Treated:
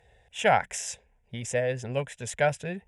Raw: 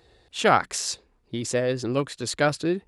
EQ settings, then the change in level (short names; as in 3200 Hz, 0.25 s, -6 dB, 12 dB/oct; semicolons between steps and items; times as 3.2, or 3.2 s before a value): air absorption 64 m; high shelf 5000 Hz +9 dB; fixed phaser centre 1200 Hz, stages 6; 0.0 dB